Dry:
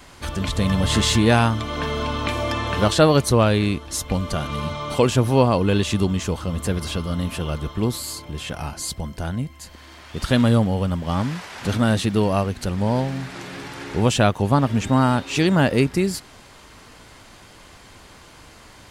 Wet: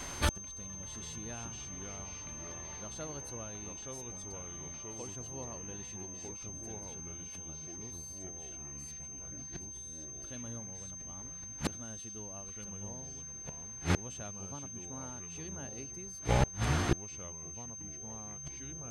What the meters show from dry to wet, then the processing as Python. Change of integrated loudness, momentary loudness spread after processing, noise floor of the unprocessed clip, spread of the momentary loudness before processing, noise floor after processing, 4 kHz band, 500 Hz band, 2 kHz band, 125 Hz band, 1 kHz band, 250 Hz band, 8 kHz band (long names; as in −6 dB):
−18.0 dB, 9 LU, −46 dBFS, 13 LU, −46 dBFS, −20.0 dB, −22.0 dB, −17.0 dB, −18.5 dB, −19.0 dB, −22.0 dB, −4.0 dB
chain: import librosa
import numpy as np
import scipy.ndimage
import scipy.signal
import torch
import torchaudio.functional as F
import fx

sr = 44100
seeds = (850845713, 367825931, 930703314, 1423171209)

y = fx.echo_pitch(x, sr, ms=307, semitones=-3, count=3, db_per_echo=-3.0)
y = fx.gate_flip(y, sr, shuts_db=-17.0, range_db=-31)
y = y + 10.0 ** (-45.0 / 20.0) * np.sin(2.0 * np.pi * 6300.0 * np.arange(len(y)) / sr)
y = y * 10.0 ** (1.5 / 20.0)